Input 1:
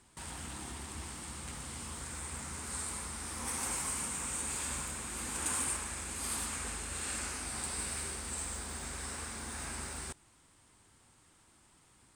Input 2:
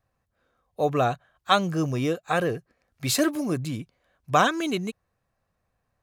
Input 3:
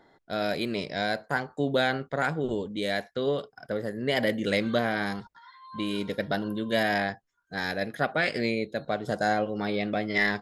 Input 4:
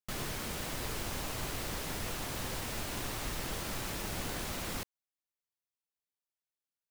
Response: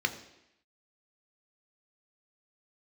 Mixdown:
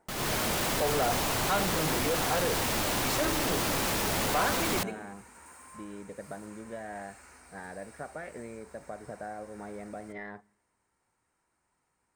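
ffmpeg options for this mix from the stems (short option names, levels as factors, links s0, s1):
-filter_complex "[0:a]asoftclip=type=tanh:threshold=0.0237,acrusher=bits=3:mode=log:mix=0:aa=0.000001,volume=0.188,asplit=2[s0][s1];[s1]volume=0.335[s2];[1:a]volume=0.355,asplit=2[s3][s4];[s4]volume=0.501[s5];[2:a]lowpass=1500,acompressor=threshold=0.0398:ratio=6,volume=0.299,asplit=2[s6][s7];[s7]volume=0.075[s8];[3:a]lowshelf=f=77:g=-8.5,dynaudnorm=f=150:g=3:m=3.35,asoftclip=type=tanh:threshold=0.0422,volume=1.26[s9];[4:a]atrim=start_sample=2205[s10];[s2][s5][s8]amix=inputs=3:normalize=0[s11];[s11][s10]afir=irnorm=-1:irlink=0[s12];[s0][s3][s6][s9][s12]amix=inputs=5:normalize=0,asoftclip=type=hard:threshold=0.0562,equalizer=f=850:t=o:w=1.1:g=3"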